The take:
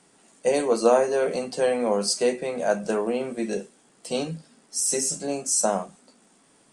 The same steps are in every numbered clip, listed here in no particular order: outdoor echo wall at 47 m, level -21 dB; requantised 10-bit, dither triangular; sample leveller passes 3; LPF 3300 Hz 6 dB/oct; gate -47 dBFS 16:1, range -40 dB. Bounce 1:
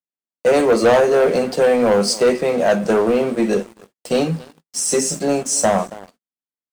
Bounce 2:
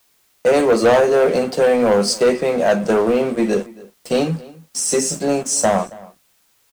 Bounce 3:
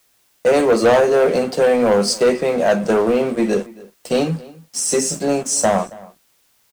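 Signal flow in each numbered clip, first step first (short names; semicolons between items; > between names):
outdoor echo > requantised > LPF > sample leveller > gate; LPF > gate > sample leveller > requantised > outdoor echo; gate > LPF > sample leveller > outdoor echo > requantised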